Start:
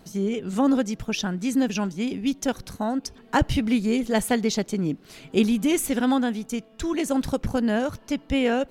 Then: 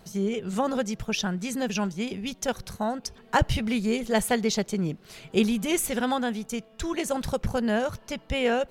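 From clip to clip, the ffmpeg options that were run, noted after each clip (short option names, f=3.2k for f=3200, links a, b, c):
-af "equalizer=f=280:w=4.8:g=-13.5"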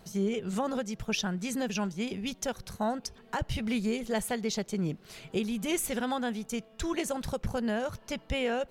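-af "alimiter=limit=-18dB:level=0:latency=1:release=359,volume=-2dB"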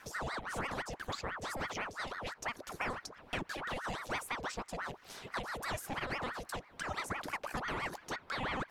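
-filter_complex "[0:a]acrossover=split=610|1700[a][b][c];[a]acompressor=threshold=-41dB:ratio=4[d];[b]acompressor=threshold=-39dB:ratio=4[e];[c]acompressor=threshold=-47dB:ratio=4[f];[d][e][f]amix=inputs=3:normalize=0,aeval=exprs='val(0)*sin(2*PI*970*n/s+970*0.75/6*sin(2*PI*6*n/s))':c=same,volume=2.5dB"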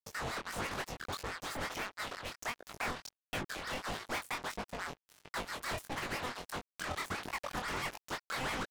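-af "acrusher=bits=5:mix=0:aa=0.5,flanger=delay=19:depth=5.4:speed=1.5,volume=3dB"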